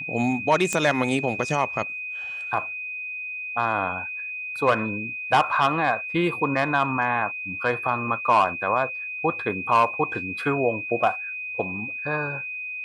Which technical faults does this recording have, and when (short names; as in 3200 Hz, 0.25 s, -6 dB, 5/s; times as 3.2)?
tone 2500 Hz -30 dBFS
0.73 pop -11 dBFS